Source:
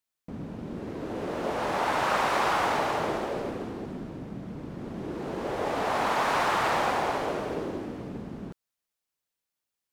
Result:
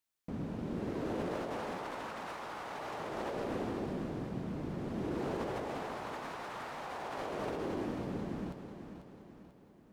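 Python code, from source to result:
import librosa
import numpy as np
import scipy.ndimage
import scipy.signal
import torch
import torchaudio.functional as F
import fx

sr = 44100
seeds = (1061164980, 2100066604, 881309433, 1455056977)

y = fx.over_compress(x, sr, threshold_db=-34.0, ratio=-1.0)
y = fx.echo_feedback(y, sr, ms=492, feedback_pct=48, wet_db=-9.5)
y = F.gain(torch.from_numpy(y), -5.5).numpy()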